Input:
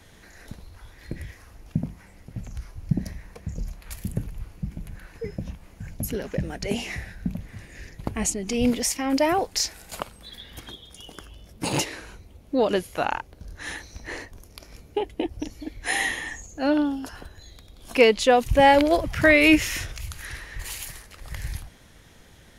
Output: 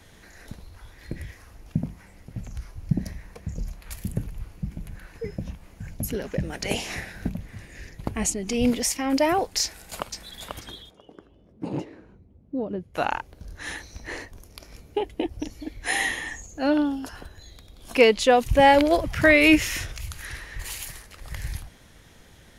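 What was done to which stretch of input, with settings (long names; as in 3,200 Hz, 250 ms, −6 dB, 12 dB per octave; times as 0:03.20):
0:06.52–0:07.28: ceiling on every frequency bin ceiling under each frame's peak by 14 dB
0:09.63–0:10.33: delay throw 490 ms, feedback 20%, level −5 dB
0:10.89–0:12.94: resonant band-pass 420 Hz → 120 Hz, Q 0.96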